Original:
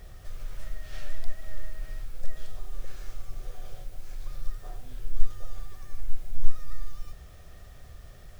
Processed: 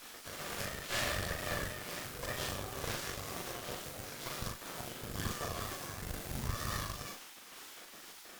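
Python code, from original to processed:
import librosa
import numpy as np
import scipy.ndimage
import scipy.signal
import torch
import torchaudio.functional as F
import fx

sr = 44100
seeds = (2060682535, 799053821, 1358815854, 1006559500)

y = fx.pitch_ramps(x, sr, semitones=-1.5, every_ms=330)
y = fx.spec_gate(y, sr, threshold_db=-30, keep='weak')
y = fx.cheby_harmonics(y, sr, harmonics=(6,), levels_db=(-9,), full_scale_db=-35.0)
y = fx.doubler(y, sr, ms=41.0, db=-5.0)
y = y * 10.0 ** (9.5 / 20.0)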